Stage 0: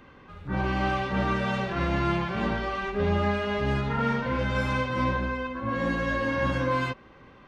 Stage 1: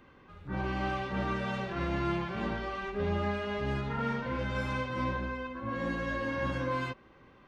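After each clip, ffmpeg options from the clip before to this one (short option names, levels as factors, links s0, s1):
-af "equalizer=f=350:t=o:w=0.26:g=3,volume=0.473"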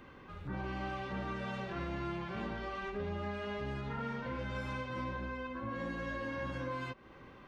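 -af "acompressor=threshold=0.00708:ratio=3,volume=1.5"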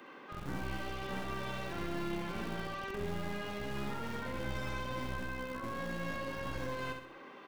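-filter_complex "[0:a]acrossover=split=230|2700[s0][s1][s2];[s0]acrusher=bits=5:dc=4:mix=0:aa=0.000001[s3];[s1]alimiter=level_in=6.31:limit=0.0631:level=0:latency=1,volume=0.158[s4];[s3][s4][s2]amix=inputs=3:normalize=0,aecho=1:1:64|128|192|256|320:0.501|0.221|0.097|0.0427|0.0188,volume=1.5"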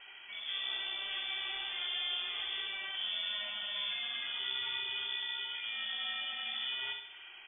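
-af "lowpass=f=3000:t=q:w=0.5098,lowpass=f=3000:t=q:w=0.6013,lowpass=f=3000:t=q:w=0.9,lowpass=f=3000:t=q:w=2.563,afreqshift=-3500"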